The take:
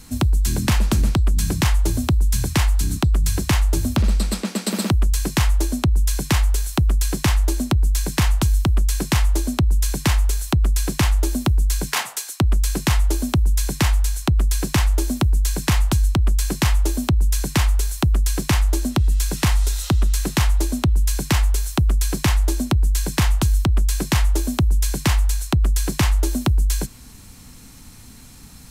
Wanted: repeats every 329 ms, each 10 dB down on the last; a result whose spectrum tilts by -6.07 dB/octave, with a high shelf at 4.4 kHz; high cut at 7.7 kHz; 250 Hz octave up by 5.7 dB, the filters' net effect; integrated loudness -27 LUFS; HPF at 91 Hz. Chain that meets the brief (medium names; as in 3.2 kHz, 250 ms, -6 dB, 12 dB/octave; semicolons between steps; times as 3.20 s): high-pass 91 Hz; low-pass 7.7 kHz; peaking EQ 250 Hz +7.5 dB; treble shelf 4.4 kHz -6 dB; feedback delay 329 ms, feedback 32%, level -10 dB; trim -5 dB